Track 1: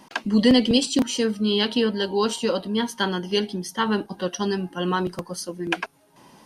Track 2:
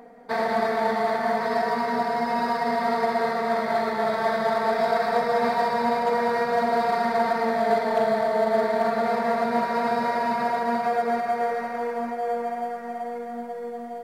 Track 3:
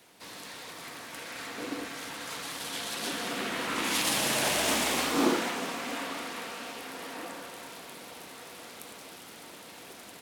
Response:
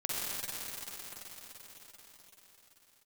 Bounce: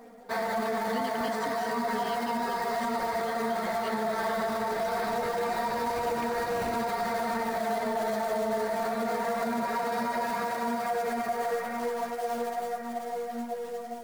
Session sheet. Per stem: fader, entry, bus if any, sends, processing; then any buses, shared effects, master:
−18.5 dB, 0.50 s, no send, no processing
+1.0 dB, 0.00 s, no send, floating-point word with a short mantissa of 2 bits; string-ensemble chorus
+1.5 dB, 1.40 s, no send, gate on every frequency bin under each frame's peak −20 dB weak; decimation without filtering 26×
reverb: not used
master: brickwall limiter −21.5 dBFS, peak gain reduction 10 dB

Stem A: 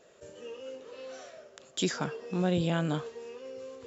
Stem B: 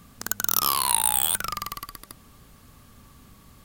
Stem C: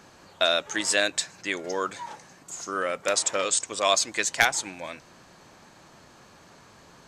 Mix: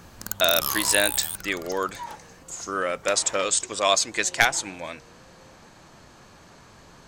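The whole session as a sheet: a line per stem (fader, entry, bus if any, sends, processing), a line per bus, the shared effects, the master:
−15.5 dB, 1.80 s, no send, Butterworth high-pass 320 Hz
0:00.96 −7 dB → 0:01.52 −15 dB, 0.00 s, no send, bass and treble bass +10 dB, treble +4 dB
+1.5 dB, 0.00 s, no send, low-shelf EQ 71 Hz +11 dB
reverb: not used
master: no processing

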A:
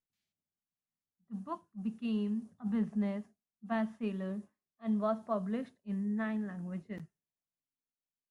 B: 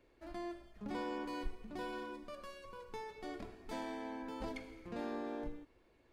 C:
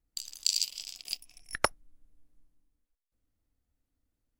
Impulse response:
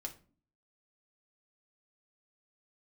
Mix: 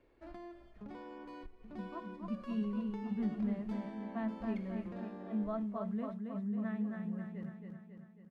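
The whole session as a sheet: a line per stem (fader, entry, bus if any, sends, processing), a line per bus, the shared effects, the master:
−7.5 dB, 0.45 s, no send, echo send −4.5 dB, parametric band 170 Hz +4.5 dB 1.9 octaves
+0.5 dB, 0.00 s, no send, no echo send, downward compressor 16 to 1, threshold −45 dBFS, peak gain reduction 14.5 dB; high-shelf EQ 7,900 Hz −6.5 dB
muted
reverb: not used
echo: repeating echo 273 ms, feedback 57%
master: high-shelf EQ 4,200 Hz −10.5 dB

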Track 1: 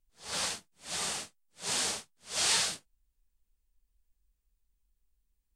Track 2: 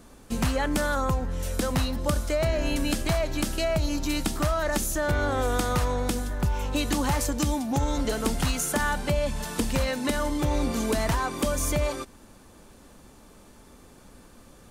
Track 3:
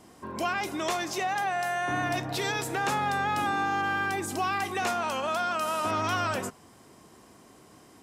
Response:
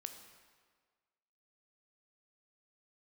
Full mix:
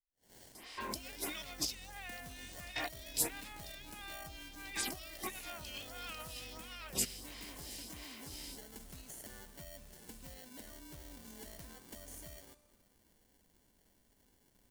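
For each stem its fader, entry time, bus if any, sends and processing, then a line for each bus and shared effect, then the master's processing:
−14.0 dB, 0.00 s, bus A, send −10.5 dB, no processing
−9.0 dB, 0.50 s, bus A, send −9 dB, no processing
+2.5 dB, 0.55 s, no bus, no send, flat-topped bell 3,100 Hz +12.5 dB; compressor whose output falls as the input rises −33 dBFS, ratio −0.5; phaser with staggered stages 1.5 Hz
bus A: 0.0 dB, decimation without filtering 35×; downward compressor 2 to 1, threshold −46 dBFS, peak gain reduction 9.5 dB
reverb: on, RT60 1.6 s, pre-delay 13 ms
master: first-order pre-emphasis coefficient 0.8

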